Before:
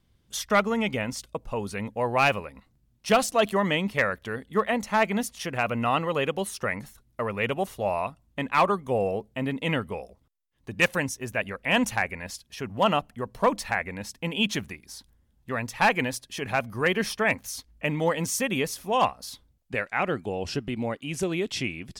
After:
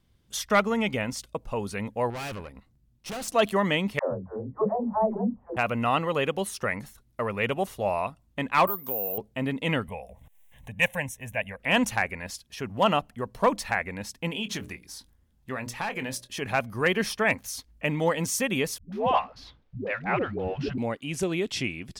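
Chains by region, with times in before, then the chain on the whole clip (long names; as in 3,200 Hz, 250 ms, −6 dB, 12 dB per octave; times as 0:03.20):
0:02.10–0:03.28: low-shelf EQ 250 Hz +6 dB + tube saturation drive 33 dB, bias 0.65
0:03.99–0:05.57: Butterworth low-pass 950 Hz + double-tracking delay 26 ms −10.5 dB + all-pass dispersion lows, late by 146 ms, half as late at 300 Hz
0:08.67–0:09.18: high-pass filter 180 Hz + downward compressor 2.5 to 1, threshold −35 dBFS + bad sample-rate conversion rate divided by 3×, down none, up zero stuff
0:09.88–0:11.60: upward compression, threshold −33 dBFS + phaser with its sweep stopped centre 1,300 Hz, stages 6
0:14.31–0:16.34: mains-hum notches 60/120/180/240/300/360/420/480/540/600 Hz + downward compressor 5 to 1, threshold −28 dBFS + double-tracking delay 23 ms −12 dB
0:18.78–0:20.78: mu-law and A-law mismatch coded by mu + high-frequency loss of the air 260 metres + all-pass dispersion highs, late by 143 ms, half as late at 300 Hz
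whole clip: no processing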